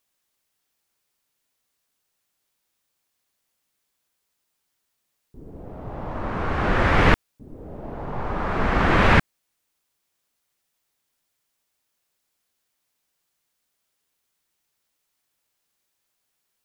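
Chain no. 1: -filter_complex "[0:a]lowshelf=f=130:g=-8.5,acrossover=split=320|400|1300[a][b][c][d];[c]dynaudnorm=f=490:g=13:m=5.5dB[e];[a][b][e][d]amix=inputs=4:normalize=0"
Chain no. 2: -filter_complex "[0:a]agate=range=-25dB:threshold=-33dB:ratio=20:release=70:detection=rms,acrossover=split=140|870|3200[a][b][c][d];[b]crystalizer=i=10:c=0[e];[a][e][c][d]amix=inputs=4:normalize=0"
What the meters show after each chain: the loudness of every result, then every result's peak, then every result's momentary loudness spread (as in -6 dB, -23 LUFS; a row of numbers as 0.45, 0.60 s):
-20.5, -21.0 LUFS; -3.0, -3.0 dBFS; 19, 18 LU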